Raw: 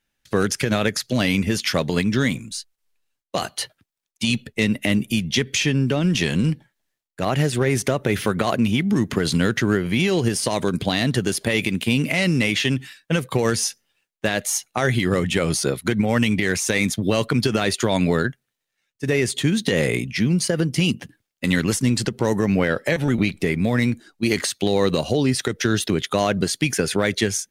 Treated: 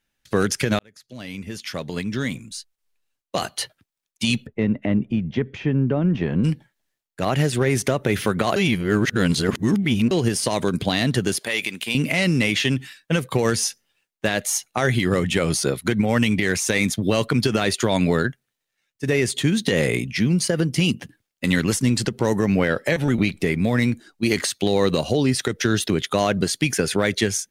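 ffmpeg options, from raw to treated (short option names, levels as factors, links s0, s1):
-filter_complex "[0:a]asplit=3[s0][s1][s2];[s0]afade=t=out:st=4.45:d=0.02[s3];[s1]lowpass=1200,afade=t=in:st=4.45:d=0.02,afade=t=out:st=6.43:d=0.02[s4];[s2]afade=t=in:st=6.43:d=0.02[s5];[s3][s4][s5]amix=inputs=3:normalize=0,asettb=1/sr,asplit=3[s6][s7][s8];[s6]atrim=end=11.394[s9];[s7]atrim=start=11.39:end=11.95,asetpts=PTS-STARTPTS,afade=t=in:d=0.004:c=qsin,afade=t=out:st=0.556:d=0.004:c=qsin,highpass=f=900:p=1[s10];[s8]atrim=start=11.946[s11];[s9][s10]acrossfade=d=0.004:c1=hsin:c2=qsin[s12];[s12][s11]acrossfade=d=0.004:c1=qsin:c2=hsin,asplit=4[s13][s14][s15][s16];[s13]atrim=end=0.79,asetpts=PTS-STARTPTS,afade=t=out:st=0.786:d=0.004:c=hsin[s17];[s14]atrim=start=0.79:end=8.562,asetpts=PTS-STARTPTS,afade=t=in:d=2.63[s18];[s15]atrim=start=8.558:end=10.112,asetpts=PTS-STARTPTS,areverse[s19];[s16]atrim=start=10.108[s20];[s17][s18]concat=n=2:v=0:a=1[s21];[s21][s19]acrossfade=d=0.004:c1=hsin:c2=hsin[s22];[s22][s20]acrossfade=d=0.004:c1=hsin:c2=hsin"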